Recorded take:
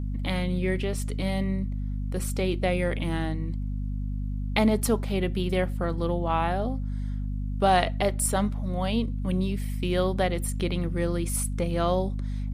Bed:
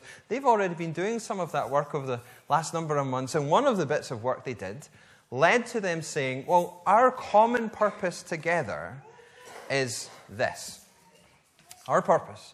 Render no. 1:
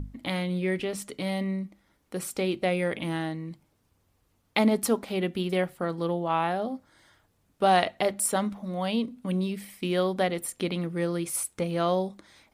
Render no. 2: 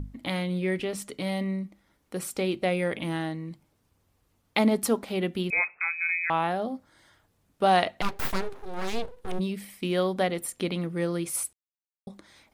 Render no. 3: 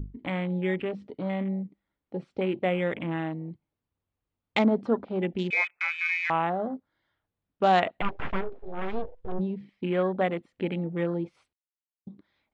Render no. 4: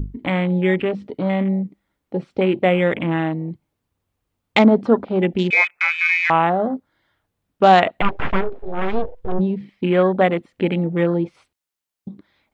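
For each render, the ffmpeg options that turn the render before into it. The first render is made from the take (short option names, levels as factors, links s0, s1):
-af "bandreject=f=50:t=h:w=6,bandreject=f=100:t=h:w=6,bandreject=f=150:t=h:w=6,bandreject=f=200:t=h:w=6,bandreject=f=250:t=h:w=6"
-filter_complex "[0:a]asettb=1/sr,asplit=3[s0][s1][s2];[s0]atrim=end=5.504[s3];[s1]atrim=start=5.5:end=6.3,asetpts=PTS-STARTPTS,afade=t=in:d=0.004:c=qsin,afade=t=out:st=0.796:d=0.004:c=qsin,lowpass=f=2300:t=q:w=0.5098,lowpass=f=2300:t=q:w=0.6013,lowpass=f=2300:t=q:w=0.9,lowpass=f=2300:t=q:w=2.563,afreqshift=-2700[s4];[s2]atrim=start=6.296[s5];[s3][s4]acrossfade=d=0.004:c1=hsin:c2=qsin[s6];[s6][s5]acrossfade=d=0.004:c1=qsin:c2=hsin,asplit=3[s7][s8][s9];[s7]afade=t=out:st=8.01:d=0.02[s10];[s8]aeval=exprs='abs(val(0))':c=same,afade=t=in:st=8.01:d=0.02,afade=t=out:st=9.38:d=0.02[s11];[s9]afade=t=in:st=9.38:d=0.02[s12];[s10][s11][s12]amix=inputs=3:normalize=0,asplit=3[s13][s14][s15];[s13]atrim=end=11.53,asetpts=PTS-STARTPTS,afade=t=out:st=11.526:d=0.004:c=hsin[s16];[s14]atrim=start=11.53:end=12.07,asetpts=PTS-STARTPTS,volume=0[s17];[s15]atrim=start=12.07,asetpts=PTS-STARTPTS,afade=t=in:d=0.004:c=hsin[s18];[s16][s17][s18]concat=n=3:v=0:a=1"
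-af "lowpass=f=3900:w=0.5412,lowpass=f=3900:w=1.3066,afwtdn=0.0141"
-af "volume=3.16,alimiter=limit=0.891:level=0:latency=1"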